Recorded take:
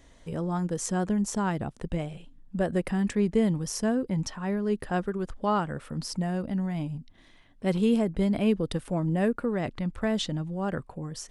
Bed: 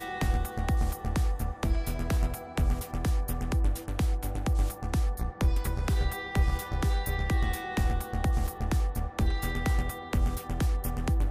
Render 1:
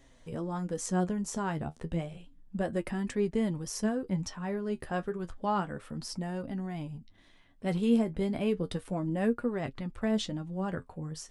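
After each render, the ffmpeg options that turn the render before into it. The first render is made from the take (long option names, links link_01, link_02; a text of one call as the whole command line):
ffmpeg -i in.wav -af "flanger=delay=7.3:depth=6:regen=46:speed=0.31:shape=triangular" out.wav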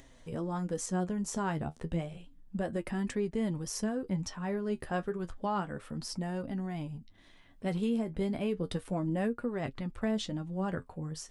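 ffmpeg -i in.wav -af "alimiter=limit=-23dB:level=0:latency=1:release=204,acompressor=mode=upward:threshold=-52dB:ratio=2.5" out.wav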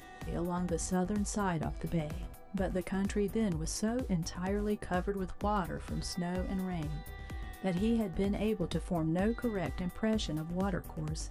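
ffmpeg -i in.wav -i bed.wav -filter_complex "[1:a]volume=-15.5dB[link_01];[0:a][link_01]amix=inputs=2:normalize=0" out.wav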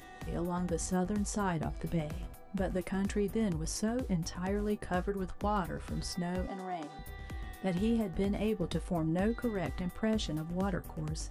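ffmpeg -i in.wav -filter_complex "[0:a]asettb=1/sr,asplit=3[link_01][link_02][link_03];[link_01]atrim=end=6.474[link_04];[link_02]atrim=start=6.47:end=6.99,asetpts=PTS-STARTPTS,afade=type=in:duration=0.004:curve=qsin,afade=type=out:start_time=0.516:duration=0.004:curve=qsin,highpass=frequency=250:width=0.5412,highpass=frequency=250:width=1.3066,equalizer=frequency=730:width_type=q:width=4:gain=8,equalizer=frequency=1200:width_type=q:width=4:gain=3,equalizer=frequency=2600:width_type=q:width=4:gain=-4,lowpass=frequency=9200:width=0.5412,lowpass=frequency=9200:width=1.3066[link_05];[link_03]atrim=start=6.986[link_06];[link_04][link_05]acrossfade=duration=0.004:curve1=hsin:curve2=qsin[link_07];[link_07][link_06]acrossfade=duration=0.004:curve1=qsin:curve2=hsin" out.wav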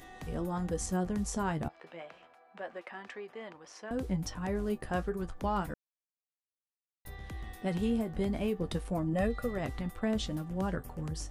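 ffmpeg -i in.wav -filter_complex "[0:a]asettb=1/sr,asplit=3[link_01][link_02][link_03];[link_01]atrim=end=1.684[link_04];[link_02]atrim=start=1.68:end=3.91,asetpts=PTS-STARTPTS,afade=type=in:duration=0.004:curve=qsin,afade=type=out:start_time=2.226:duration=0.004:curve=qsin,highpass=710,lowpass=2800[link_05];[link_03]atrim=start=3.906[link_06];[link_04][link_05]acrossfade=duration=0.004:curve1=hsin:curve2=qsin[link_07];[link_07][link_06]acrossfade=duration=0.004:curve1=qsin:curve2=hsin,asettb=1/sr,asplit=3[link_08][link_09][link_10];[link_08]atrim=end=9.134[link_11];[link_09]atrim=start=9.13:end=9.58,asetpts=PTS-STARTPTS,afade=type=in:duration=0.004:curve=qsin,afade=type=out:start_time=0.446:duration=0.004:curve=qsin,aecho=1:1:1.6:0.65,atrim=end_sample=19845[link_12];[link_10]atrim=start=9.576[link_13];[link_11][link_12]acrossfade=duration=0.004:curve1=hsin:curve2=qsin[link_14];[link_14][link_13]acrossfade=duration=0.004:curve1=qsin:curve2=hsin,asplit=3[link_15][link_16][link_17];[link_15]atrim=end=5.74,asetpts=PTS-STARTPTS,afade=type=out:start_time=5.736:duration=0.004:curve=hsin[link_18];[link_16]atrim=start=5.74:end=7.05,asetpts=PTS-STARTPTS,volume=0[link_19];[link_17]atrim=start=7.05,asetpts=PTS-STARTPTS,afade=type=in:duration=0.004:curve=hsin[link_20];[link_18][link_19][link_20]concat=n=3:v=0:a=1" out.wav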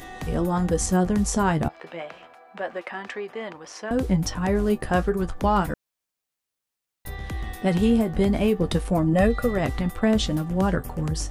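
ffmpeg -i in.wav -af "volume=11dB" out.wav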